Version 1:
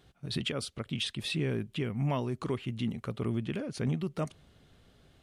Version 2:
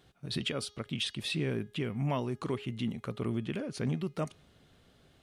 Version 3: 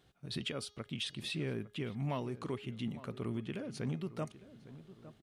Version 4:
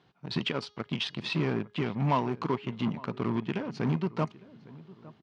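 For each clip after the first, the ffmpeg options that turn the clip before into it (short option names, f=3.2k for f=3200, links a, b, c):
-af "lowshelf=f=84:g=-7,bandreject=f=414.6:t=h:w=4,bandreject=f=829.2:t=h:w=4,bandreject=f=1.2438k:t=h:w=4,bandreject=f=1.6584k:t=h:w=4,bandreject=f=2.073k:t=h:w=4,bandreject=f=2.4876k:t=h:w=4,bandreject=f=2.9022k:t=h:w=4,bandreject=f=3.3168k:t=h:w=4,bandreject=f=3.7314k:t=h:w=4,bandreject=f=4.146k:t=h:w=4,bandreject=f=4.5606k:t=h:w=4,bandreject=f=4.9752k:t=h:w=4,bandreject=f=5.3898k:t=h:w=4,bandreject=f=5.8044k:t=h:w=4,bandreject=f=6.219k:t=h:w=4,bandreject=f=6.6336k:t=h:w=4"
-filter_complex "[0:a]asplit=2[a][b];[b]adelay=857,lowpass=f=1.6k:p=1,volume=-15.5dB,asplit=2[c][d];[d]adelay=857,lowpass=f=1.6k:p=1,volume=0.46,asplit=2[e][f];[f]adelay=857,lowpass=f=1.6k:p=1,volume=0.46,asplit=2[g][h];[h]adelay=857,lowpass=f=1.6k:p=1,volume=0.46[i];[a][c][e][g][i]amix=inputs=5:normalize=0,volume=-5dB"
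-filter_complex "[0:a]asplit=2[a][b];[b]acrusher=bits=5:mix=0:aa=0.5,volume=-3dB[c];[a][c]amix=inputs=2:normalize=0,highpass=120,equalizer=f=170:t=q:w=4:g=4,equalizer=f=560:t=q:w=4:g=-3,equalizer=f=970:t=q:w=4:g=9,equalizer=f=3.6k:t=q:w=4:g=-4,lowpass=f=5.1k:w=0.5412,lowpass=f=5.1k:w=1.3066,volume=4dB"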